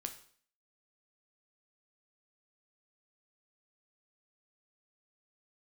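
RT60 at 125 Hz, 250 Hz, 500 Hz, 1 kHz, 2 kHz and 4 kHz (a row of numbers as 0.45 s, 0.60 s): 0.50 s, 0.55 s, 0.55 s, 0.50 s, 0.50 s, 0.50 s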